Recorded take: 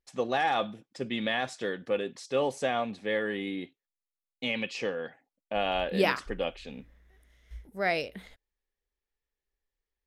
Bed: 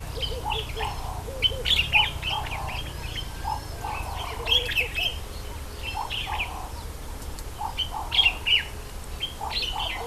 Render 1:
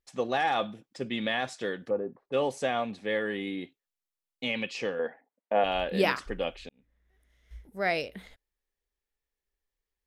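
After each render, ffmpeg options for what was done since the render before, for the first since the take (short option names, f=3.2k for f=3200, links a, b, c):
-filter_complex "[0:a]asplit=3[a][b][c];[a]afade=t=out:st=1.89:d=0.02[d];[b]lowpass=f=1.1k:w=0.5412,lowpass=f=1.1k:w=1.3066,afade=t=in:st=1.89:d=0.02,afade=t=out:st=2.32:d=0.02[e];[c]afade=t=in:st=2.32:d=0.02[f];[d][e][f]amix=inputs=3:normalize=0,asettb=1/sr,asplit=3[g][h][i];[g]atrim=end=4.994[j];[h]atrim=start=4.99:end=5.64,asetpts=PTS-STARTPTS,afade=t=in:d=0.004:c=qsin,afade=t=out:st=0.646:d=0.004:c=qsin,highpass=210,equalizer=f=230:t=q:w=4:g=6,equalizer=f=460:t=q:w=4:g=9,equalizer=f=670:t=q:w=4:g=5,equalizer=f=950:t=q:w=4:g=7,equalizer=f=1.8k:t=q:w=4:g=4,equalizer=f=2.8k:t=q:w=4:g=-7,lowpass=f=3.2k:w=0.5412,lowpass=f=3.2k:w=1.3066[k];[i]atrim=start=5.636[l];[j][k]acrossfade=d=0.004:c1=hsin:c2=qsin[m];[m][l]acrossfade=d=0.004:c1=qsin:c2=hsin,asplit=2[n][o];[n]atrim=end=6.69,asetpts=PTS-STARTPTS,afade=t=out:st=6.686:d=0.004:c=hsin[p];[o]atrim=start=6.69,asetpts=PTS-STARTPTS,afade=t=in:d=1.13[q];[p][q]concat=n=2:v=0:a=1"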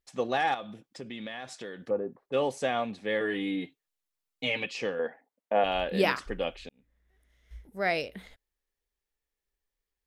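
-filter_complex "[0:a]asettb=1/sr,asplit=3[a][b][c];[a]atrim=end=0.544[d];[b]atrim=start=0.54:end=1.8,asetpts=PTS-STARTPTS,afade=t=in:d=0.004:c=qsin,afade=t=out:st=1.256:d=0.004:c=qsin,acompressor=threshold=-38dB:ratio=3:attack=3.2:release=140:knee=1:detection=peak[e];[c]atrim=start=1.796[f];[d][e]acrossfade=d=0.004:c1=hsin:c2=qsin[g];[g][f]acrossfade=d=0.004:c1=qsin:c2=hsin,asettb=1/sr,asplit=3[h][i][j];[h]atrim=end=3.204[k];[i]atrim=start=3.2:end=4.66,asetpts=PTS-STARTPTS,afade=t=in:d=0.004:c=qsin,afade=t=out:st=1.456:d=0.004:c=qsin,aecho=1:1:6.6:0.75,atrim=end_sample=64386[l];[j]atrim=start=4.656[m];[k][l]acrossfade=d=0.004:c1=hsin:c2=qsin[n];[n][m]acrossfade=d=0.004:c1=qsin:c2=hsin"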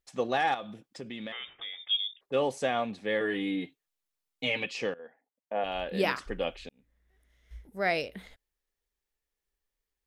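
-filter_complex "[0:a]asettb=1/sr,asplit=3[a][b][c];[a]atrim=end=1.324[d];[b]atrim=start=1.32:end=2.21,asetpts=PTS-STARTPTS,afade=t=in:d=0.004:c=qsin,afade=t=out:st=0.886:d=0.004:c=qsin,lowpass=f=3.2k:t=q:w=0.5098,lowpass=f=3.2k:t=q:w=0.6013,lowpass=f=3.2k:t=q:w=0.9,lowpass=f=3.2k:t=q:w=2.563,afreqshift=-3800[e];[c]atrim=start=2.206[f];[d][e]acrossfade=d=0.004:c1=hsin:c2=qsin[g];[g][f]acrossfade=d=0.004:c1=qsin:c2=hsin,asplit=2[h][i];[h]atrim=end=4.94,asetpts=PTS-STARTPTS,afade=t=out:st=4.936:d=0.004:c=hsin:silence=0.112202[j];[i]atrim=start=4.94,asetpts=PTS-STARTPTS,afade=t=in:d=1.54:silence=0.112202[k];[j][k]concat=n=2:v=0:a=1"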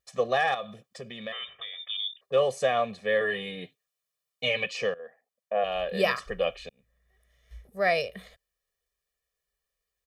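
-af "highpass=f=88:p=1,aecho=1:1:1.7:0.99"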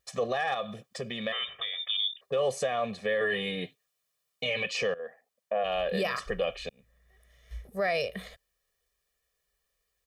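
-filter_complex "[0:a]asplit=2[a][b];[b]acompressor=threshold=-35dB:ratio=6,volume=-1.5dB[c];[a][c]amix=inputs=2:normalize=0,alimiter=limit=-20dB:level=0:latency=1:release=24"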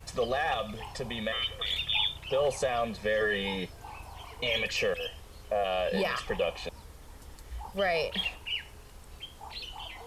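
-filter_complex "[1:a]volume=-13dB[a];[0:a][a]amix=inputs=2:normalize=0"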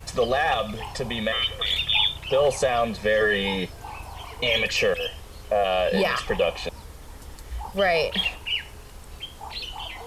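-af "volume=7dB"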